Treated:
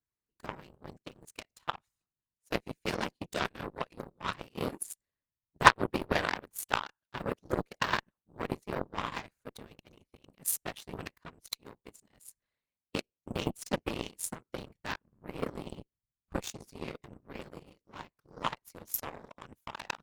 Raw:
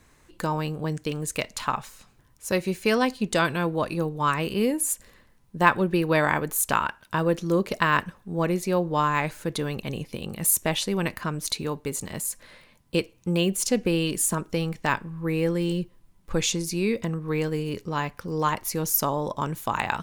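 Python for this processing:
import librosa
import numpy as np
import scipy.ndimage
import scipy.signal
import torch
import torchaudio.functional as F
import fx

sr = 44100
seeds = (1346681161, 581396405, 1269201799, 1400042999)

y = fx.whisperise(x, sr, seeds[0])
y = fx.cheby_harmonics(y, sr, harmonics=(7,), levels_db=(-17,), full_scale_db=-1.5)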